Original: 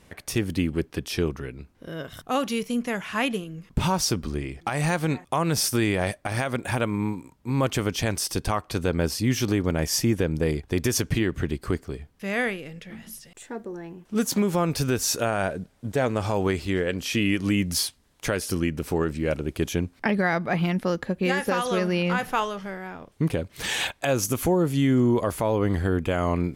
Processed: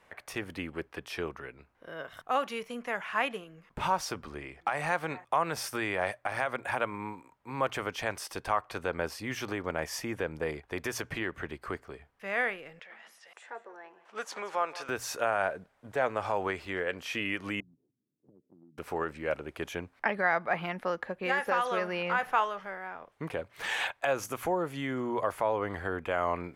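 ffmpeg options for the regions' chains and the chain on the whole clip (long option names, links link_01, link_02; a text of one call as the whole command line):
ffmpeg -i in.wav -filter_complex "[0:a]asettb=1/sr,asplit=3[link_01][link_02][link_03];[link_01]atrim=end=12.794[link_04];[link_02]atrim=start=12.79:end=14.89,asetpts=PTS-STARTPTS,afade=type=in:duration=0.004:curve=qsin,afade=type=out:start_time=2.096:duration=0.004:curve=qsin,acompressor=mode=upward:threshold=-37dB:ratio=2.5:attack=3.2:release=140:knee=2.83:detection=peak,highpass=530,lowpass=7200,aecho=1:1:179:0.141,atrim=end_sample=92610[link_05];[link_03]atrim=start=14.886[link_06];[link_04][link_05]acrossfade=duration=0.004:curve1=hsin:curve2=qsin[link_07];[link_07][link_06]acrossfade=duration=0.004:curve1=qsin:curve2=hsin,asettb=1/sr,asplit=3[link_08][link_09][link_10];[link_08]atrim=end=17.604[link_11];[link_09]atrim=start=17.6:end=18.78,asetpts=PTS-STARTPTS,afade=type=in:duration=0.004:curve=qsin,afade=type=out:start_time=1.176:duration=0.004:curve=qsin,asuperpass=centerf=200:order=8:qfactor=0.86,acompressor=threshold=-49dB:ratio=2.5:attack=3.2:release=140:knee=1:detection=peak[link_12];[link_10]atrim=start=18.776[link_13];[link_11][link_12]acrossfade=duration=0.004:curve1=hsin:curve2=qsin[link_14];[link_14][link_13]acrossfade=duration=0.004:curve1=qsin:curve2=hsin,acrossover=split=540 2400:gain=0.141 1 0.2[link_15][link_16][link_17];[link_15][link_16][link_17]amix=inputs=3:normalize=0,bandreject=frequency=60:width_type=h:width=6,bandreject=frequency=120:width_type=h:width=6" out.wav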